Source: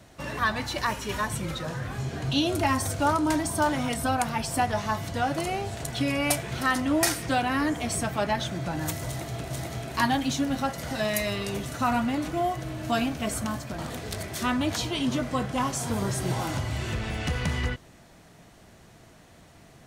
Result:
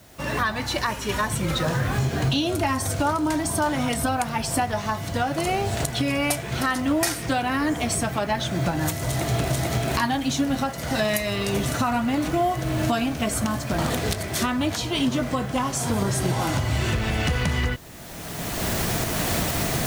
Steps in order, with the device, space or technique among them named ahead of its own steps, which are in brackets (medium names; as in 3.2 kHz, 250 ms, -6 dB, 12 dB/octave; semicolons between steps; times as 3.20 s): cheap recorder with automatic gain (white noise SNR 29 dB; recorder AGC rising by 23 dB/s)